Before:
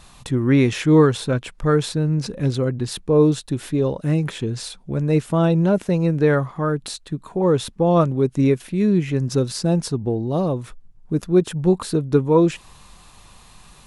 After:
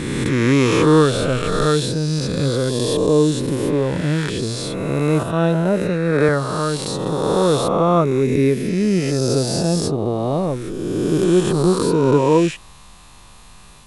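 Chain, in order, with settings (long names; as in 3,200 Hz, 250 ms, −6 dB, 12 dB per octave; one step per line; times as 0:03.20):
peak hold with a rise ahead of every peak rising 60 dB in 2.35 s
0:05.23–0:06.29: multiband upward and downward expander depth 100%
level −1 dB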